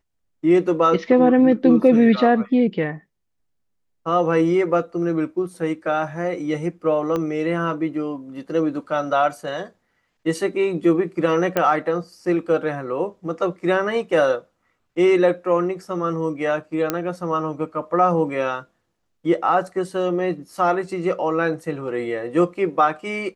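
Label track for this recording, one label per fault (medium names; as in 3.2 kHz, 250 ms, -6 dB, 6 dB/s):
7.160000	7.160000	pop -13 dBFS
11.570000	11.570000	pop -7 dBFS
16.900000	16.900000	pop -6 dBFS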